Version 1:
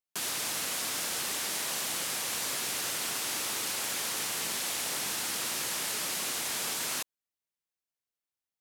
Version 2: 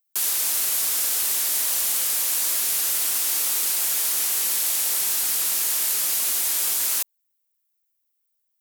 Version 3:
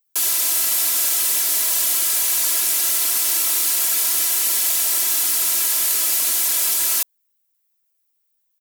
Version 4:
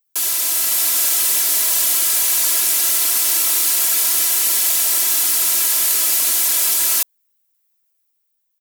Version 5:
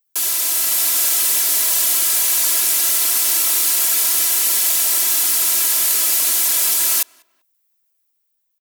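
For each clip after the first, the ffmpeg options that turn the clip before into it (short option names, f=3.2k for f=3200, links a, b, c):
-af "aemphasis=mode=production:type=bsi"
-af "asoftclip=type=tanh:threshold=-11dB,aecho=1:1:3:0.88,volume=2dB"
-af "dynaudnorm=f=120:g=11:m=3dB"
-filter_complex "[0:a]asplit=2[a][b];[b]adelay=195,lowpass=f=2.3k:p=1,volume=-24dB,asplit=2[c][d];[d]adelay=195,lowpass=f=2.3k:p=1,volume=0.33[e];[a][c][e]amix=inputs=3:normalize=0,acrusher=bits=8:mode=log:mix=0:aa=0.000001"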